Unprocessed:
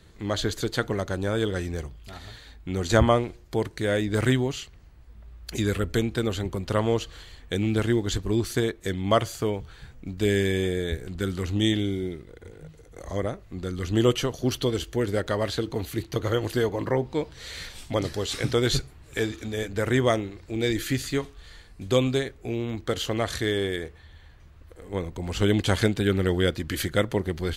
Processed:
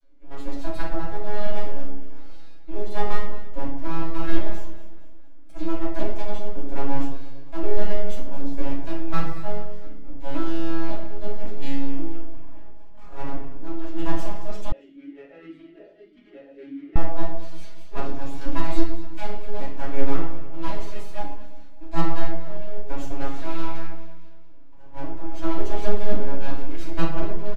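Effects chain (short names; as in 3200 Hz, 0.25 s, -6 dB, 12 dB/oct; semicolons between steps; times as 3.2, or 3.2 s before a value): arpeggiated vocoder minor triad, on C#3, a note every 0.544 s; comb 1.6 ms, depth 98%; AGC gain up to 5.5 dB; rotary speaker horn 1.1 Hz, later 5 Hz, at 11.89; full-wave rectifier; echo with dull and thin repeats by turns 0.115 s, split 980 Hz, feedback 67%, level -12 dB; reverb RT60 0.75 s, pre-delay 3 ms, DRR -7 dB; 14.72–16.96 vowel sweep e-i 1.7 Hz; gain -13.5 dB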